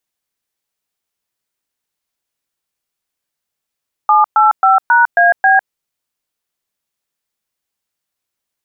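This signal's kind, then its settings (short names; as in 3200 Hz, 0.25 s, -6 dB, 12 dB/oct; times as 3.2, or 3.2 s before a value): DTMF "785#AB", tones 0.153 s, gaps 0.117 s, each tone -9 dBFS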